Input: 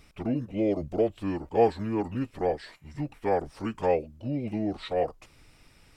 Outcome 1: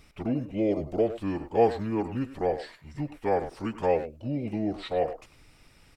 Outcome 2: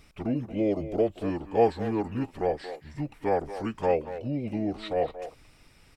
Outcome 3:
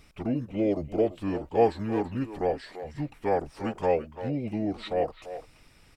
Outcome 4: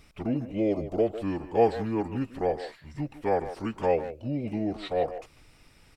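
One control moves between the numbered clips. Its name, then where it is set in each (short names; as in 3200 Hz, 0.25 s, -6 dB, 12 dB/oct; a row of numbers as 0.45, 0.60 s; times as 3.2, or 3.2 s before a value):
speakerphone echo, time: 0.1, 0.23, 0.34, 0.15 s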